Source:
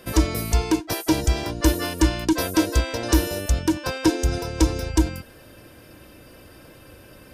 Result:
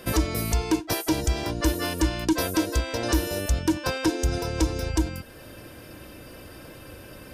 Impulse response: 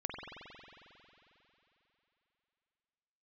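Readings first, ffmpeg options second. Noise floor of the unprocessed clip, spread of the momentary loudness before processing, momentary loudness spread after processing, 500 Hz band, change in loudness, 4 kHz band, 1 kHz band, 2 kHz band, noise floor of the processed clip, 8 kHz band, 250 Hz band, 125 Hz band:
-48 dBFS, 3 LU, 18 LU, -2.5 dB, -3.0 dB, -2.0 dB, -2.5 dB, -1.5 dB, -45 dBFS, -2.5 dB, -3.5 dB, -3.5 dB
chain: -filter_complex "[0:a]alimiter=limit=-16.5dB:level=0:latency=1:release=442,asplit=2[a][b];[1:a]atrim=start_sample=2205,atrim=end_sample=3528[c];[b][c]afir=irnorm=-1:irlink=0,volume=-21.5dB[d];[a][d]amix=inputs=2:normalize=0,volume=2.5dB"

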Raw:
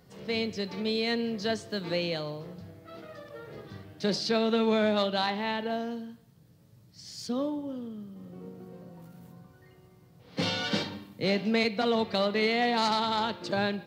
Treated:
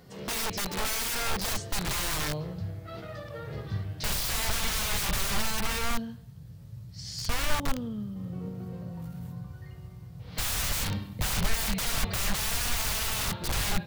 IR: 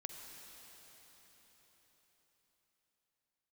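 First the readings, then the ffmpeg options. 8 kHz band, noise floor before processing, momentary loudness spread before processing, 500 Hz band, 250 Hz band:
+17.0 dB, -58 dBFS, 20 LU, -10.5 dB, -6.5 dB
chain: -af "aeval=exprs='(mod(35.5*val(0)+1,2)-1)/35.5':c=same,asubboost=boost=9:cutoff=99,volume=5dB"

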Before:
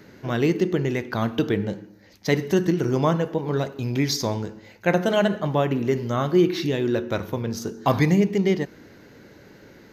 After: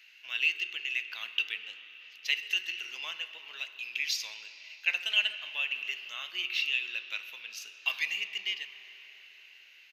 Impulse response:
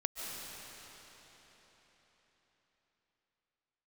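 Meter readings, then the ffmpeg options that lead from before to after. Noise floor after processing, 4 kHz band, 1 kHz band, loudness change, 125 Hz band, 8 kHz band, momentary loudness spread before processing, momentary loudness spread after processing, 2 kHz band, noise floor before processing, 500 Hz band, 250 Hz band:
-56 dBFS, +3.0 dB, -22.5 dB, -8.5 dB, under -40 dB, -7.0 dB, 9 LU, 17 LU, +1.0 dB, -50 dBFS, -36.0 dB, under -40 dB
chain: -filter_complex "[0:a]highpass=f=2.7k:t=q:w=11,asplit=2[a][b];[b]adelay=130,highpass=300,lowpass=3.4k,asoftclip=type=hard:threshold=-12.5dB,volume=-21dB[c];[a][c]amix=inputs=2:normalize=0,asplit=2[d][e];[1:a]atrim=start_sample=2205,asetrate=43218,aresample=44100,lowpass=4.2k[f];[e][f]afir=irnorm=-1:irlink=0,volume=-12dB[g];[d][g]amix=inputs=2:normalize=0,volume=-8.5dB"

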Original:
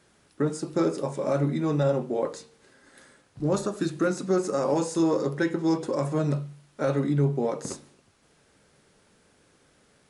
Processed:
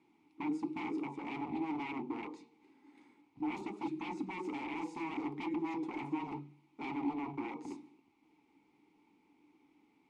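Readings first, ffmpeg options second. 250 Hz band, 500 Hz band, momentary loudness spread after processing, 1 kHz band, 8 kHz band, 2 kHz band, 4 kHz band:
-10.5 dB, -20.5 dB, 9 LU, -7.0 dB, under -25 dB, -7.0 dB, -12.0 dB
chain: -filter_complex "[0:a]aeval=exprs='0.0398*(abs(mod(val(0)/0.0398+3,4)-2)-1)':c=same,asubboost=boost=2.5:cutoff=53,asplit=3[a][b][c];[a]bandpass=f=300:t=q:w=8,volume=0dB[d];[b]bandpass=f=870:t=q:w=8,volume=-6dB[e];[c]bandpass=f=2.24k:t=q:w=8,volume=-9dB[f];[d][e][f]amix=inputs=3:normalize=0,volume=6dB"

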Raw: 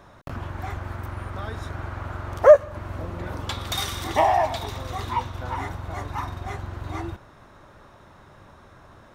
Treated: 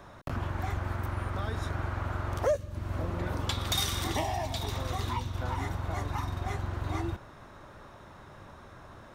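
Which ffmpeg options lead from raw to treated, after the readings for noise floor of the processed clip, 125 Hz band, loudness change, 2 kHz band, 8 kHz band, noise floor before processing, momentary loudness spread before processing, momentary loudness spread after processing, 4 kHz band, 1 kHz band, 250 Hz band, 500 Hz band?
-51 dBFS, 0.0 dB, -8.0 dB, -5.0 dB, 0.0 dB, -51 dBFS, 16 LU, 20 LU, -1.5 dB, -9.5 dB, -1.0 dB, -14.0 dB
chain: -filter_complex "[0:a]acrossover=split=330|3000[a][b][c];[b]acompressor=threshold=-35dB:ratio=6[d];[a][d][c]amix=inputs=3:normalize=0"

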